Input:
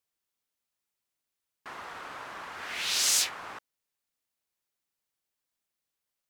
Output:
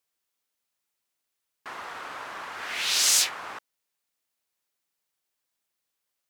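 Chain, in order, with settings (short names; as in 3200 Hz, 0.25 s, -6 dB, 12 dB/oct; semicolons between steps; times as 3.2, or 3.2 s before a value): low shelf 220 Hz -6.5 dB; gain +4 dB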